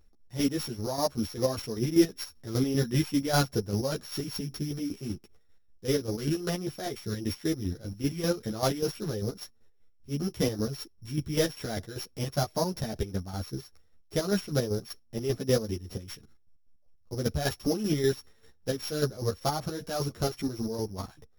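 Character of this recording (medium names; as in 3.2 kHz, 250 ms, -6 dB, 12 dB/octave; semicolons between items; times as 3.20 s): a buzz of ramps at a fixed pitch in blocks of 8 samples; chopped level 5.1 Hz, depth 60%, duty 40%; a shimmering, thickened sound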